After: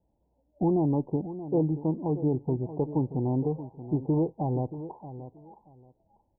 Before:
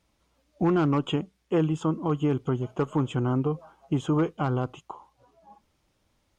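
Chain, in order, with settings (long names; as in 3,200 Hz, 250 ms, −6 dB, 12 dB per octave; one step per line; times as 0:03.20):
Butterworth low-pass 930 Hz 96 dB per octave
on a send: repeating echo 629 ms, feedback 20%, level −13 dB
on the sum: level −1.5 dB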